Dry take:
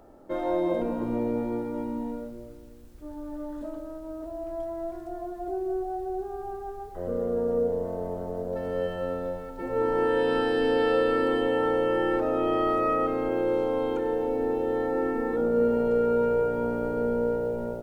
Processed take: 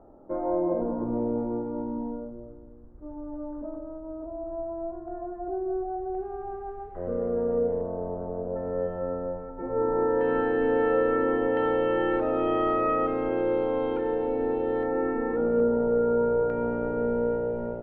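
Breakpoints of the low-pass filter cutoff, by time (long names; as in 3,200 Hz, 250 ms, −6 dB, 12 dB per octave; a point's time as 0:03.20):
low-pass filter 24 dB per octave
1,200 Hz
from 0:05.08 1,600 Hz
from 0:06.15 2,300 Hz
from 0:07.81 1,400 Hz
from 0:10.21 2,000 Hz
from 0:11.57 3,300 Hz
from 0:14.83 2,400 Hz
from 0:15.60 1,500 Hz
from 0:16.50 2,400 Hz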